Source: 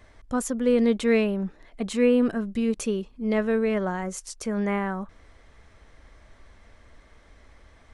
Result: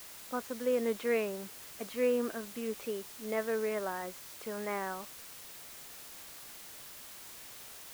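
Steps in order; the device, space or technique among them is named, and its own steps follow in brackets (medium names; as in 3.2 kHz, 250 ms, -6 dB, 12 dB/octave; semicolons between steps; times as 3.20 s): wax cylinder (band-pass 390–2500 Hz; wow and flutter; white noise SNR 12 dB); trim -6 dB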